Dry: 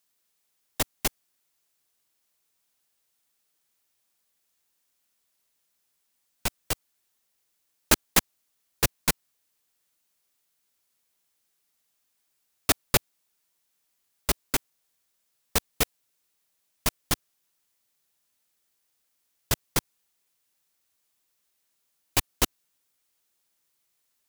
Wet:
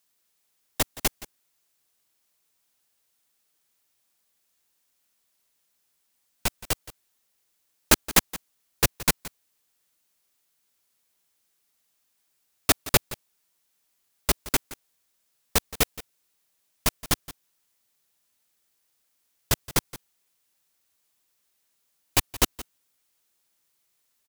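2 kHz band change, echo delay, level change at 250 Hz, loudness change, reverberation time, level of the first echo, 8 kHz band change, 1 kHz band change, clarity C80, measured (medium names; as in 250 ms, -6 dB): +2.0 dB, 171 ms, +2.0 dB, +2.0 dB, no reverb, -17.5 dB, +2.0 dB, +2.0 dB, no reverb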